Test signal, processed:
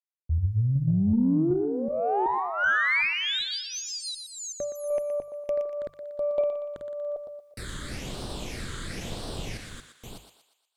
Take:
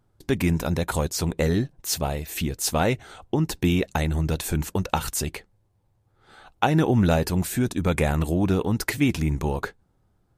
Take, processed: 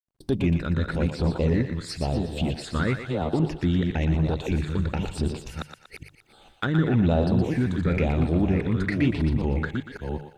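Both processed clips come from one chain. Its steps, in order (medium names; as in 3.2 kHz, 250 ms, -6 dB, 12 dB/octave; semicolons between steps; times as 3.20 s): chunks repeated in reverse 377 ms, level -5.5 dB; phase shifter stages 8, 1 Hz, lowest notch 720–2200 Hz; hum notches 50/100/150 Hz; expander -51 dBFS; in parallel at +1 dB: peak limiter -16 dBFS; on the sum: low-pass that closes with the level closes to 2.9 kHz, closed at -17.5 dBFS; word length cut 12-bit, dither none; Chebyshev shaper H 8 -35 dB, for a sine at -4 dBFS; on a send: thinning echo 119 ms, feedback 49%, high-pass 550 Hz, level -7 dB; on the sum: trim -6 dB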